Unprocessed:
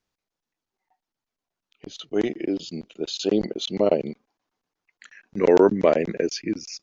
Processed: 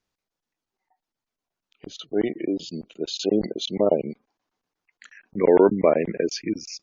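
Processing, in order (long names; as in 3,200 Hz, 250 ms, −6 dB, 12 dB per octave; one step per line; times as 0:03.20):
gate on every frequency bin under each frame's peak −30 dB strong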